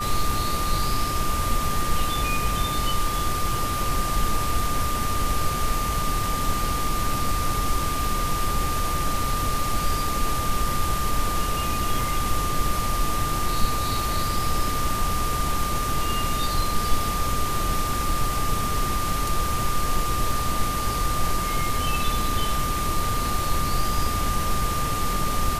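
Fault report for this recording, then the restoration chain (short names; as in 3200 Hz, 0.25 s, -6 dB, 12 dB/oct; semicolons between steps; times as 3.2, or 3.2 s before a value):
tone 1200 Hz -27 dBFS
12.01 gap 3 ms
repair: notch 1200 Hz, Q 30; interpolate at 12.01, 3 ms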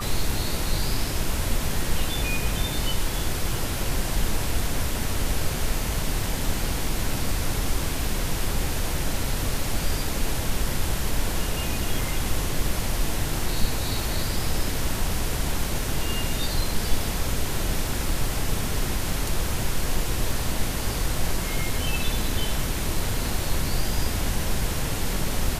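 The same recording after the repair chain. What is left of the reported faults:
none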